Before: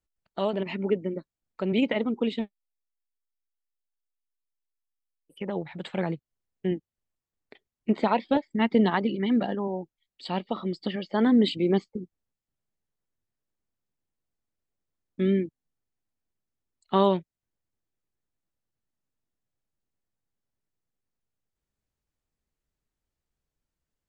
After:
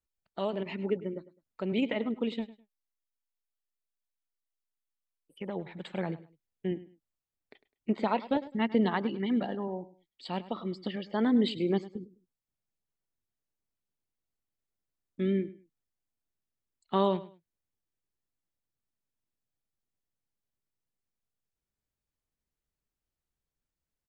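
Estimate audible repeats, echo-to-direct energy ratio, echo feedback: 2, -17.0 dB, 24%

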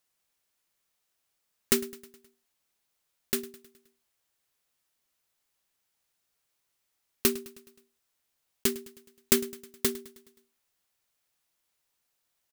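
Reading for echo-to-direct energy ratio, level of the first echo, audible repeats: -18.0 dB, -19.5 dB, 4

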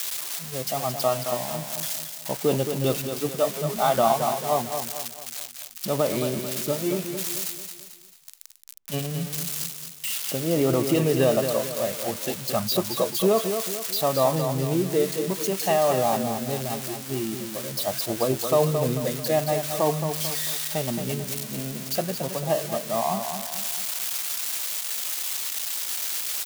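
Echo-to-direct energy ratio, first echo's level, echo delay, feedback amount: -6.5 dB, -7.5 dB, 221 ms, 44%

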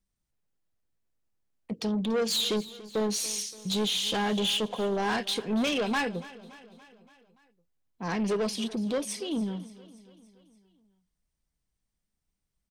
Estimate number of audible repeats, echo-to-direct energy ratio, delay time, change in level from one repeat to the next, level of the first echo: 4, -16.5 dB, 286 ms, -4.5 dB, -18.5 dB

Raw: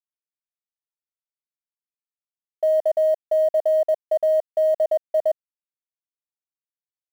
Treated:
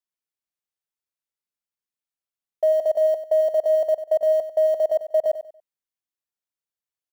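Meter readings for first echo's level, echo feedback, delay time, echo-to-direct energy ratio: -12.0 dB, 28%, 95 ms, -11.5 dB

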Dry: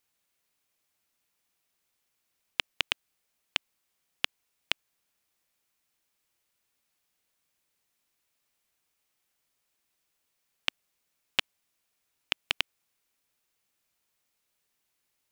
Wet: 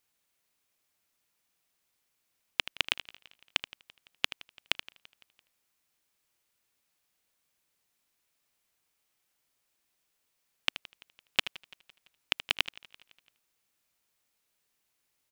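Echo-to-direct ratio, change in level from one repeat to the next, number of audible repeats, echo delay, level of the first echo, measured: -12.0 dB, no regular repeats, 5, 78 ms, -13.0 dB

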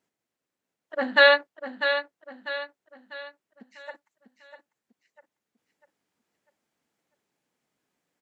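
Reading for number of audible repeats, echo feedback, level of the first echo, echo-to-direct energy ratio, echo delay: 4, 42%, -9.0 dB, -8.0 dB, 647 ms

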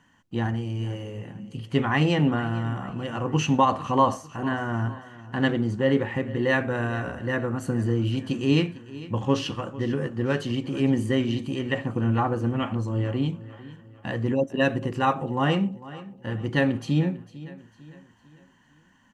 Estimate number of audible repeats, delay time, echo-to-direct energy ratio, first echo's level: 3, 450 ms, -16.5 dB, -17.5 dB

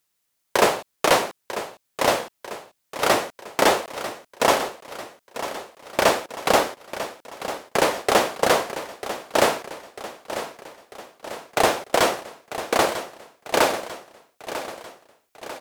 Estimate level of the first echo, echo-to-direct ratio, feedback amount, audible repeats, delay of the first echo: -12.0 dB, -10.5 dB, 54%, 5, 945 ms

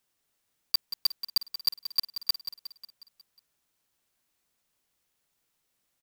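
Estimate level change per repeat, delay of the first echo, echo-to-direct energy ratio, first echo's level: -5.0 dB, 181 ms, -9.5 dB, -11.0 dB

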